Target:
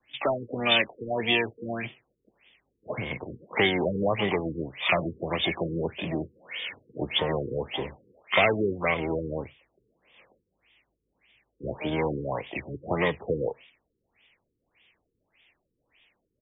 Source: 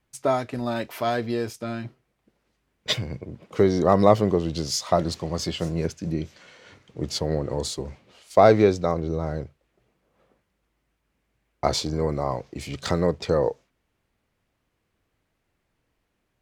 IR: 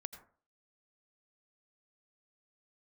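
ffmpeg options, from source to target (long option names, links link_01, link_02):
-filter_complex "[0:a]acrossover=split=92|220|1200[link_01][link_02][link_03][link_04];[link_01]acompressor=threshold=-42dB:ratio=4[link_05];[link_02]acompressor=threshold=-29dB:ratio=4[link_06];[link_03]acompressor=threshold=-26dB:ratio=4[link_07];[link_04]acompressor=threshold=-34dB:ratio=4[link_08];[link_05][link_06][link_07][link_08]amix=inputs=4:normalize=0,asplit=3[link_09][link_10][link_11];[link_10]asetrate=37084,aresample=44100,atempo=1.18921,volume=-16dB[link_12];[link_11]asetrate=88200,aresample=44100,atempo=0.5,volume=-10dB[link_13];[link_09][link_12][link_13]amix=inputs=3:normalize=0,asplit=2[link_14][link_15];[link_15]highpass=frequency=720:poles=1,volume=11dB,asoftclip=type=tanh:threshold=-10dB[link_16];[link_14][link_16]amix=inputs=2:normalize=0,lowpass=frequency=2100:poles=1,volume=-6dB,aexciter=amount=15:drive=5.6:freq=2200,afftfilt=real='re*lt(b*sr/1024,480*pow(3700/480,0.5+0.5*sin(2*PI*1.7*pts/sr)))':imag='im*lt(b*sr/1024,480*pow(3700/480,0.5+0.5*sin(2*PI*1.7*pts/sr)))':win_size=1024:overlap=0.75,volume=-1dB"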